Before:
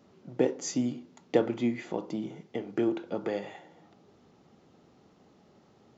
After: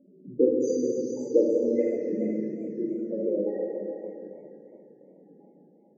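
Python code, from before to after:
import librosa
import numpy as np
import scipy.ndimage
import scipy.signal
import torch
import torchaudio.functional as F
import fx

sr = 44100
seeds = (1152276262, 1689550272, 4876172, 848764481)

p1 = scipy.signal.sosfilt(scipy.signal.butter(2, 170.0, 'highpass', fs=sr, output='sos'), x)
p2 = fx.level_steps(p1, sr, step_db=13)
p3 = p1 + (p2 * 10.0 ** (0.0 / 20.0))
p4 = fx.chopper(p3, sr, hz=0.99, depth_pct=65, duty_pct=45)
p5 = fx.spec_topn(p4, sr, count=8)
p6 = p5 + fx.echo_single(p5, sr, ms=428, db=-7.5, dry=0)
p7 = fx.rev_plate(p6, sr, seeds[0], rt60_s=2.5, hf_ratio=0.95, predelay_ms=0, drr_db=-4.0)
y = fx.echo_warbled(p7, sr, ms=281, feedback_pct=68, rate_hz=2.8, cents=178, wet_db=-18.0)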